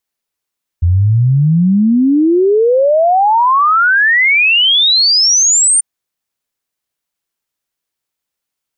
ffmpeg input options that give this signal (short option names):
-f lavfi -i "aevalsrc='0.447*clip(min(t,4.99-t)/0.01,0,1)*sin(2*PI*83*4.99/log(9100/83)*(exp(log(9100/83)*t/4.99)-1))':d=4.99:s=44100"